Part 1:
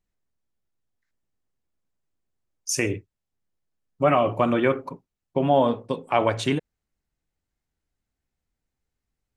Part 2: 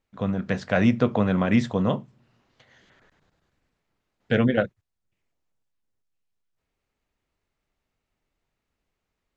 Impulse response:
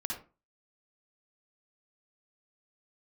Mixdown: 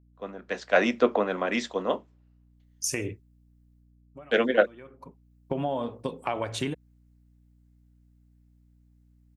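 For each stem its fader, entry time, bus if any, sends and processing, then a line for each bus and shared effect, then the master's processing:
-1.0 dB, 0.15 s, no send, treble shelf 11 kHz +8.5 dB; compression 6:1, threshold -25 dBFS, peak gain reduction 10.5 dB; auto duck -22 dB, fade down 0.55 s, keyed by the second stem
-0.5 dB, 0.00 s, no send, high-pass 300 Hz 24 dB/octave; three bands expanded up and down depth 100%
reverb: none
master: hum 60 Hz, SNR 29 dB

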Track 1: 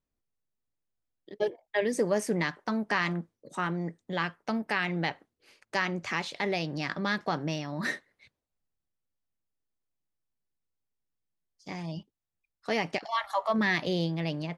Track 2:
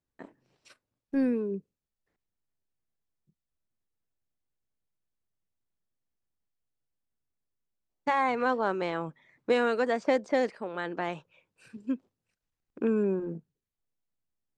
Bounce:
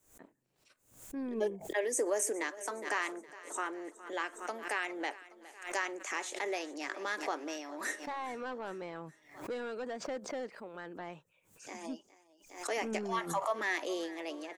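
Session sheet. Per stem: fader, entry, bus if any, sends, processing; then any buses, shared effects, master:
-5.0 dB, 0.00 s, no send, echo send -18 dB, steep high-pass 290 Hz 48 dB/octave; resonant high shelf 5.7 kHz +8 dB, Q 3
-10.0 dB, 0.00 s, no send, no echo send, saturation -22.5 dBFS, distortion -13 dB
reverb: none
echo: feedback delay 413 ms, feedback 54%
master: swell ahead of each attack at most 110 dB/s

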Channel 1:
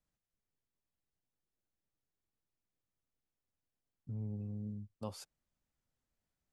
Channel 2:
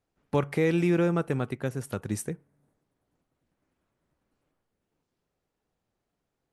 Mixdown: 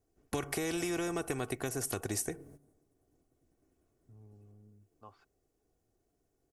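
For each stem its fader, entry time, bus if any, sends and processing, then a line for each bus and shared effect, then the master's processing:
-16.0 dB, 0.00 s, no send, low-pass 2.6 kHz 12 dB/octave; peaking EQ 1.3 kHz +13.5 dB 1.8 oct
+0.5 dB, 0.00 s, no send, gate -60 dBFS, range -14 dB; high-order bell 1.9 kHz -10.5 dB 2.7 oct; spectrum-flattening compressor 2:1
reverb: none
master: comb 2.7 ms, depth 50%; compression 3:1, threshold -34 dBFS, peak gain reduction 9.5 dB

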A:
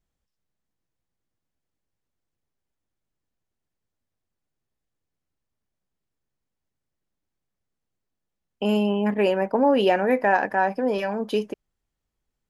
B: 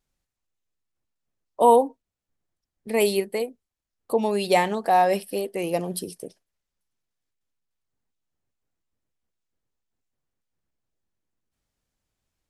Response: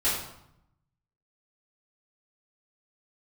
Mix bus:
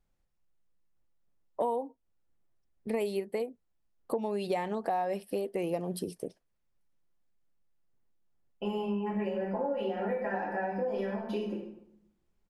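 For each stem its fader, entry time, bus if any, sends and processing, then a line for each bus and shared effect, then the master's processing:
-12.0 dB, 0.00 s, send -6 dB, comb 5.7 ms, depth 79%; peak limiter -14.5 dBFS, peak gain reduction 9.5 dB
+0.5 dB, 0.00 s, no send, none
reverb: on, RT60 0.75 s, pre-delay 3 ms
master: treble shelf 2.6 kHz -10.5 dB; compression 6:1, threshold -29 dBFS, peak gain reduction 17 dB

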